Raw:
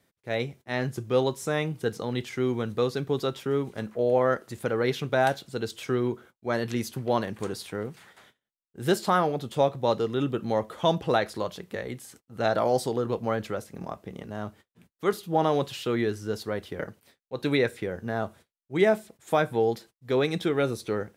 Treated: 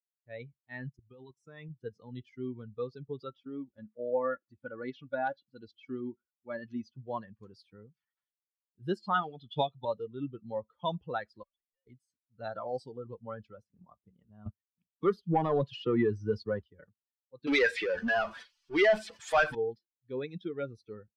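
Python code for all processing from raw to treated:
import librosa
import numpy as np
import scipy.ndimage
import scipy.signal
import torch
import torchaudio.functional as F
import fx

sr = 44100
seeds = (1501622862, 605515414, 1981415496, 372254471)

y = fx.chain(x, sr, fx.level_steps(step_db=15),
    fx.notch(hz=540.0, q=8.0), at=(0.89, 1.7))
y = fx.chain(y, sr, fx.air_absorb(metres=61.0),
    fx.comb(ms=3.5, depth=0.4), at=(3.3, 6.98))
y = fx.chain(y, sr, fx.peak_eq(hz=3400.0, db=10.5, octaves=0.91),
    fx.transient(attack_db=6, sustain_db=0),
    fx.notch_comb(f0_hz=530.0), at=(9.14, 9.85))
y = fx.chain(y, sr, fx.sine_speech(),
    fx.cheby1_highpass(hz=630.0, order=3),
    fx.tube_stage(drive_db=54.0, bias=0.8), at=(11.43, 11.87))
y = fx.chain(y, sr, fx.high_shelf(hz=2200.0, db=-3.0),
    fx.leveller(passes=2),
    fx.band_squash(depth_pct=40), at=(14.46, 16.64))
y = fx.chain(y, sr, fx.weighting(curve='A'),
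    fx.power_curve(exponent=0.35), at=(17.47, 19.55))
y = fx.bin_expand(y, sr, power=2.0)
y = scipy.signal.sosfilt(scipy.signal.butter(2, 3600.0, 'lowpass', fs=sr, output='sos'), y)
y = fx.dynamic_eq(y, sr, hz=1700.0, q=2.2, threshold_db=-50.0, ratio=4.0, max_db=4)
y = y * 10.0 ** (-3.5 / 20.0)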